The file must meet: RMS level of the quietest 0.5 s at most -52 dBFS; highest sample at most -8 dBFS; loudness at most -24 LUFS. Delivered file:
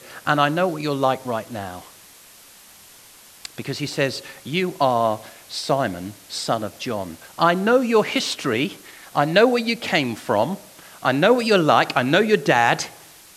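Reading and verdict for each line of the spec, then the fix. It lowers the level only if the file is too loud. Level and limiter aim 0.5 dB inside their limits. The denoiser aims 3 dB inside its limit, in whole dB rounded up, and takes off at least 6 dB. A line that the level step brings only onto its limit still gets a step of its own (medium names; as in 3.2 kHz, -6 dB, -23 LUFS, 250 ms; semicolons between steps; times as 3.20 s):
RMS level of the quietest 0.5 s -47 dBFS: fail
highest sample -3.0 dBFS: fail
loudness -20.5 LUFS: fail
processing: noise reduction 6 dB, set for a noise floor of -47 dBFS; trim -4 dB; peak limiter -8.5 dBFS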